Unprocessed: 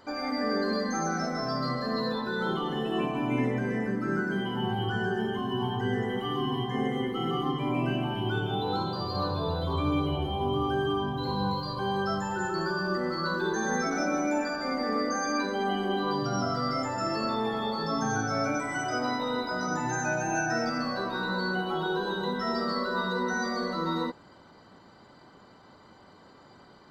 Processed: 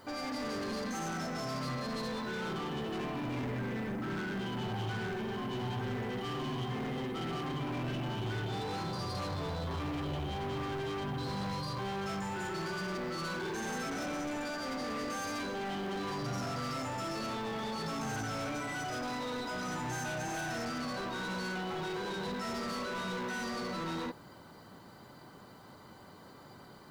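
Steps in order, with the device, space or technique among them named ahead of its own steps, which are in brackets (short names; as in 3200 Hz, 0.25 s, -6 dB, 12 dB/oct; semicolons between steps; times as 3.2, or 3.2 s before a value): open-reel tape (soft clip -35.5 dBFS, distortion -7 dB; bell 130 Hz +4.5 dB 0.91 oct; white noise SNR 33 dB)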